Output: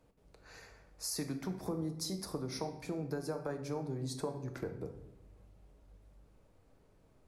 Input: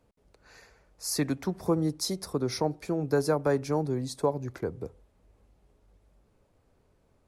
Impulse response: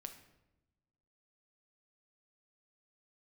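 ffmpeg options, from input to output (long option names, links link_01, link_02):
-filter_complex "[0:a]acompressor=threshold=-36dB:ratio=5[link_01];[1:a]atrim=start_sample=2205[link_02];[link_01][link_02]afir=irnorm=-1:irlink=0,volume=4.5dB"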